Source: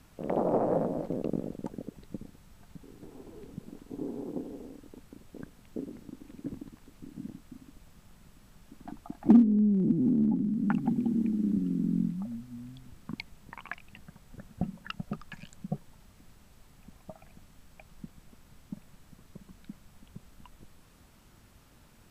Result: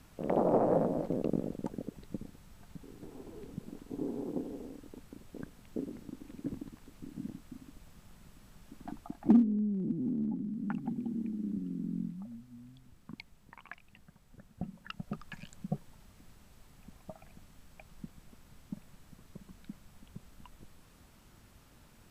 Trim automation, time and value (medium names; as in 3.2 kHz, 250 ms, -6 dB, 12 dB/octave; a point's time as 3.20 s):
8.96 s 0 dB
9.67 s -8 dB
14.54 s -8 dB
15.34 s -1 dB